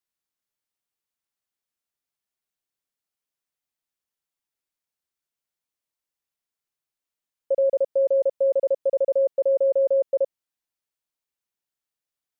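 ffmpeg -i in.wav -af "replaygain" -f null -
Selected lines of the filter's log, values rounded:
track_gain = +4.9 dB
track_peak = 0.114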